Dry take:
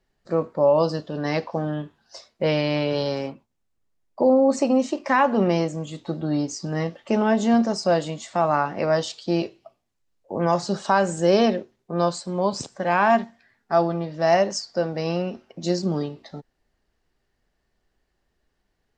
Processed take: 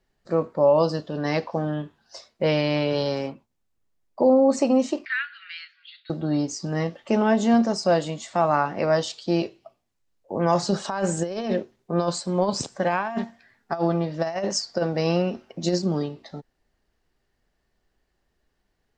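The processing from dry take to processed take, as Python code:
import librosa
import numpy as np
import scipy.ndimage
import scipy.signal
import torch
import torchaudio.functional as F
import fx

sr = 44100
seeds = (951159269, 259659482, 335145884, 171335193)

y = fx.cheby1_bandpass(x, sr, low_hz=1400.0, high_hz=4500.0, order=5, at=(5.05, 6.1))
y = fx.over_compress(y, sr, threshold_db=-22.0, ratio=-0.5, at=(10.55, 15.78))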